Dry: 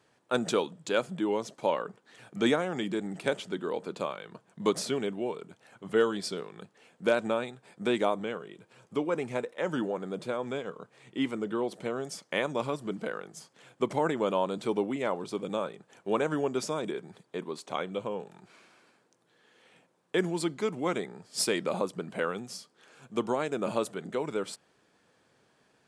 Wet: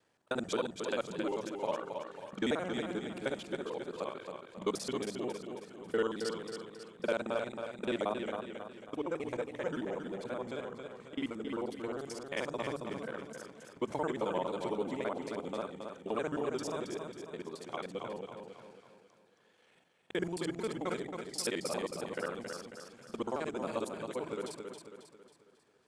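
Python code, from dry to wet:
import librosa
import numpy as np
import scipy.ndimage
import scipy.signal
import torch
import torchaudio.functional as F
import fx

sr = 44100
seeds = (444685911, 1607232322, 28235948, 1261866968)

p1 = fx.local_reverse(x, sr, ms=44.0)
p2 = fx.vibrato(p1, sr, rate_hz=3.6, depth_cents=42.0)
p3 = fx.hum_notches(p2, sr, base_hz=50, count=4)
p4 = p3 + fx.echo_feedback(p3, sr, ms=272, feedback_pct=46, wet_db=-6.0, dry=0)
y = p4 * 10.0 ** (-6.5 / 20.0)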